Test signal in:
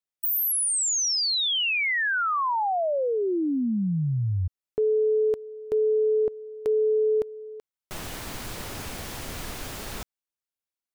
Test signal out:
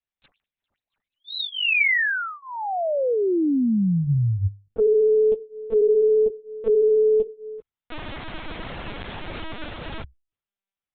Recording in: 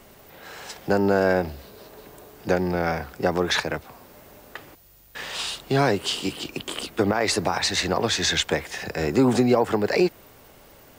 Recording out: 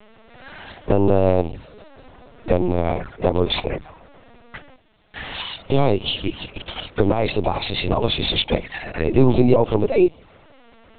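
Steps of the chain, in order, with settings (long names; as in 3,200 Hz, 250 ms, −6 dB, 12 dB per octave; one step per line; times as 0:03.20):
mains-hum notches 50/100/150 Hz
flanger swept by the level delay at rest 5.2 ms, full sweep at −21.5 dBFS
linear-prediction vocoder at 8 kHz pitch kept
level +5.5 dB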